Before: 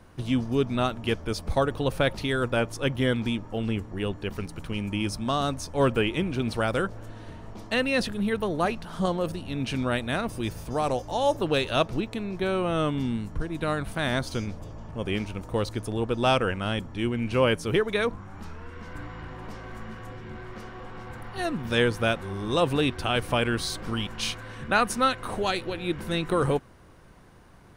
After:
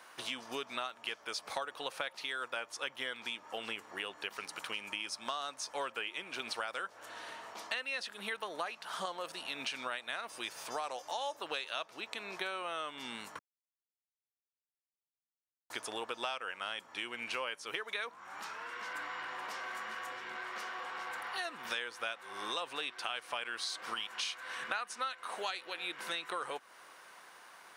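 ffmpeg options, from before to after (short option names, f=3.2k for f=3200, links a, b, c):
-filter_complex "[0:a]asplit=3[a][b][c];[a]atrim=end=13.39,asetpts=PTS-STARTPTS,afade=t=out:st=13.386:d=0.004:c=hsin[d];[b]atrim=start=13.39:end=15.7,asetpts=PTS-STARTPTS,volume=0[e];[c]atrim=start=15.7,asetpts=PTS-STARTPTS,afade=t=in:d=0.004:c=hsin[f];[d][e][f]concat=n=3:v=0:a=1,acrossover=split=8900[g][h];[h]acompressor=threshold=-59dB:ratio=4:attack=1:release=60[i];[g][i]amix=inputs=2:normalize=0,highpass=980,acompressor=threshold=-42dB:ratio=6,volume=6dB"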